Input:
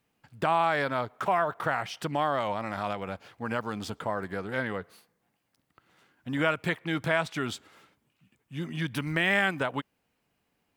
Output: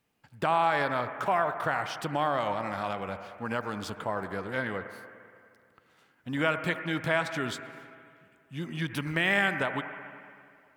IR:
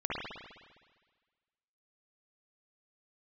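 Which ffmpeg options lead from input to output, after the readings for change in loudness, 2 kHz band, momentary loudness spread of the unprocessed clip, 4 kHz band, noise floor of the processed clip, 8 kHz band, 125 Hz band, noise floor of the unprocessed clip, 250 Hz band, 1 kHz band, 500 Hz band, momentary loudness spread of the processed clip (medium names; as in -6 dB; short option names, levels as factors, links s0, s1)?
-0.5 dB, 0.0 dB, 13 LU, -0.5 dB, -66 dBFS, -0.5 dB, -1.0 dB, -77 dBFS, -1.0 dB, 0.0 dB, -0.5 dB, 18 LU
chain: -filter_complex "[0:a]asplit=2[s0][s1];[1:a]atrim=start_sample=2205,asetrate=29988,aresample=44100,lowshelf=f=410:g=-9.5[s2];[s1][s2]afir=irnorm=-1:irlink=0,volume=0.188[s3];[s0][s3]amix=inputs=2:normalize=0,volume=0.794"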